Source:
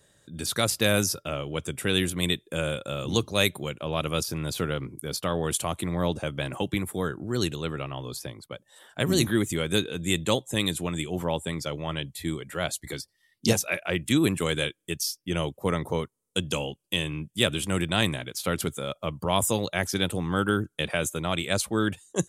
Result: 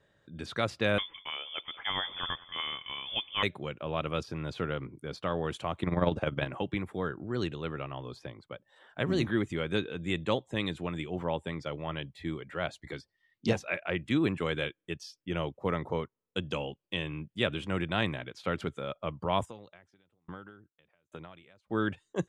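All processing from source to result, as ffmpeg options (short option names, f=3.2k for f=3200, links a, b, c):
-filter_complex "[0:a]asettb=1/sr,asplit=3[a][b][c];[a]atrim=end=0.984[d];[b]atrim=start=0.98:end=3.43,asetpts=PTS-STARTPTS,afade=t=in:d=0.004:c=qsin,afade=t=out:st=2.446:d=0.004:c=qsin,lowshelf=f=70:g=-9.5,aecho=1:1:188|376|564|752|940:0.106|0.0593|0.0332|0.0186|0.0104,atrim=end_sample=108045,lowpass=f=3.1k:t=q:w=0.5098,lowpass=f=3.1k:t=q:w=0.6013,lowpass=f=3.1k:t=q:w=0.9,lowpass=f=3.1k:t=q:w=2.563,afreqshift=-3600[e];[c]atrim=start=3.426[f];[d][e]acrossfade=d=0.004:c1=hsin:c2=qsin[g];[g][f]acrossfade=d=0.004:c1=qsin:c2=hsin,asettb=1/sr,asplit=3[h][i][j];[h]atrim=end=5.834[k];[i]atrim=start=5.83:end=6.47,asetpts=PTS-STARTPTS,afade=t=in:d=0.004:c=qsin,afade=t=out:st=0.636:d=0.004:c=qsin,acontrast=78,tremolo=f=20:d=0.667[l];[j]atrim=start=6.466[m];[k][l]acrossfade=d=0.004:c1=hsin:c2=qsin[n];[n][m]acrossfade=d=0.004:c1=qsin:c2=hsin,asettb=1/sr,asplit=3[o][p][q];[o]atrim=end=19.454[r];[p]atrim=start=19.45:end=21.7,asetpts=PTS-STARTPTS,afade=t=in:d=0.004:c=qsin,afade=t=out:st=2.246:d=0.004:c=qsin,acompressor=threshold=-31dB:ratio=8:attack=3.2:release=140:knee=1:detection=peak,aeval=exprs='val(0)*pow(10,-39*if(lt(mod(1.2*n/s,1),2*abs(1.2)/1000),1-mod(1.2*n/s,1)/(2*abs(1.2)/1000),(mod(1.2*n/s,1)-2*abs(1.2)/1000)/(1-2*abs(1.2)/1000))/20)':c=same[s];[q]atrim=start=21.696[t];[r][s]acrossfade=d=0.004:c1=hsin:c2=qsin[u];[u][t]acrossfade=d=0.004:c1=qsin:c2=hsin,lowpass=2.5k,lowshelf=f=410:g=-3.5,volume=-2.5dB"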